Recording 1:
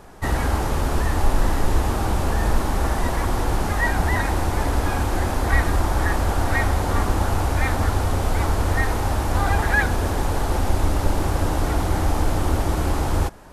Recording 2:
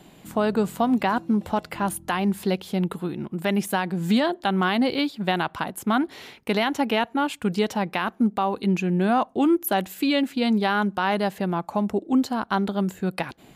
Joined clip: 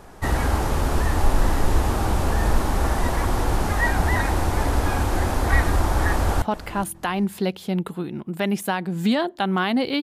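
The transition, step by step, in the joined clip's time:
recording 1
6.12–6.42 s: echo throw 410 ms, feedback 20%, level -17 dB
6.42 s: go over to recording 2 from 1.47 s

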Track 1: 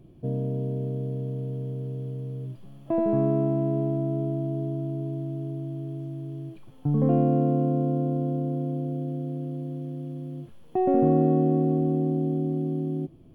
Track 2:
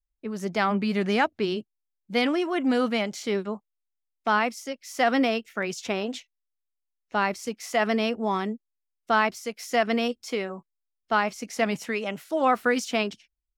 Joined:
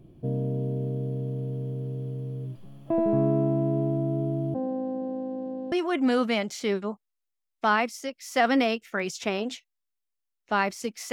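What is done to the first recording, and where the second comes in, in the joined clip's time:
track 1
4.54–5.72 s: vocoder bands 8, saw 260 Hz
5.72 s: go over to track 2 from 2.35 s

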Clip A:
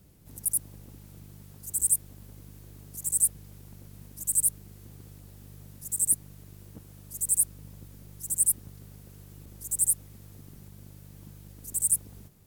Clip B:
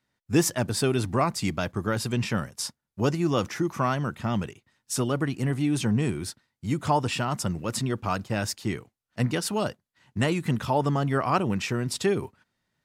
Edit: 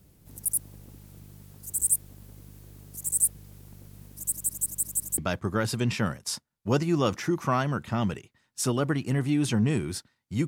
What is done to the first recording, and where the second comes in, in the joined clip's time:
clip A
4.16 s: stutter in place 0.17 s, 6 plays
5.18 s: go over to clip B from 1.50 s

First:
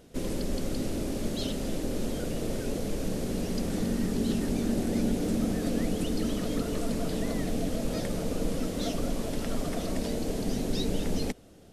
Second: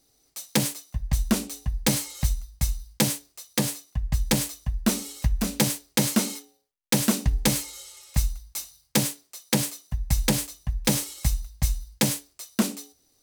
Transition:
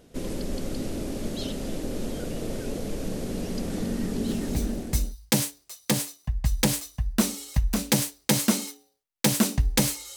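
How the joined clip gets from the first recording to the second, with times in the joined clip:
first
4.70 s: go over to second from 2.38 s, crossfade 0.90 s equal-power

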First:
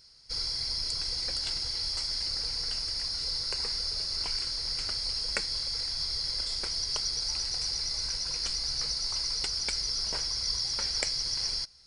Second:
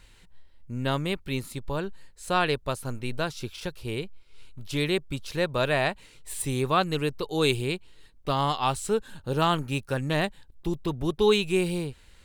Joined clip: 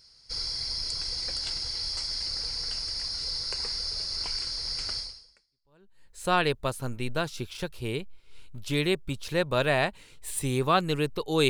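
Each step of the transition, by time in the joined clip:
first
5.55 s: go over to second from 1.58 s, crossfade 1.12 s exponential

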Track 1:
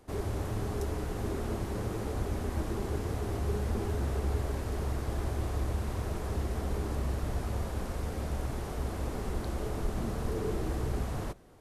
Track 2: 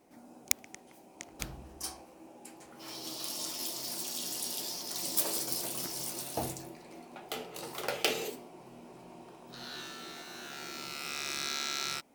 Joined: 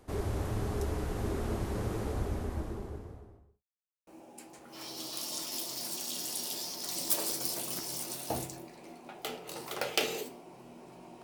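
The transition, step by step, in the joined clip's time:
track 1
1.92–3.64 s: studio fade out
3.64–4.07 s: mute
4.07 s: go over to track 2 from 2.14 s

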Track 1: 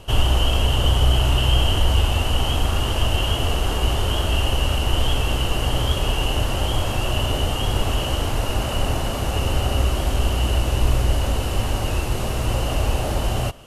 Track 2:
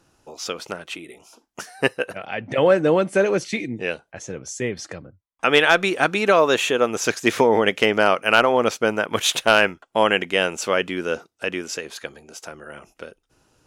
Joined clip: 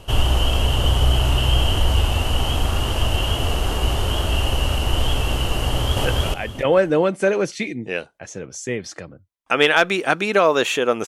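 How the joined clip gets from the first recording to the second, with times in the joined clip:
track 1
5.67–6.05 s: echo throw 290 ms, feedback 20%, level 0 dB
6.05 s: go over to track 2 from 1.98 s

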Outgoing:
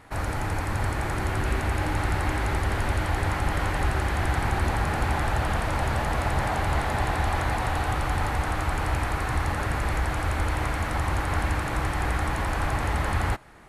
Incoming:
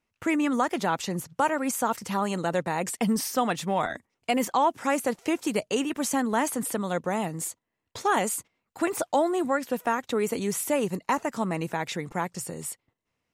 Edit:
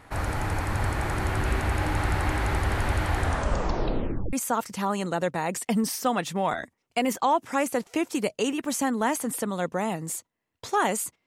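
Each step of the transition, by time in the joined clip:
outgoing
3.16 s: tape stop 1.17 s
4.33 s: go over to incoming from 1.65 s

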